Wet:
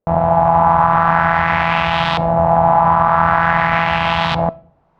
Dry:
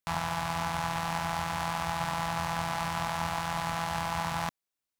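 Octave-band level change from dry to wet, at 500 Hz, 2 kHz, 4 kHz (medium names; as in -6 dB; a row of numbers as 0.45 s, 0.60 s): +22.0 dB, +17.0 dB, +12.0 dB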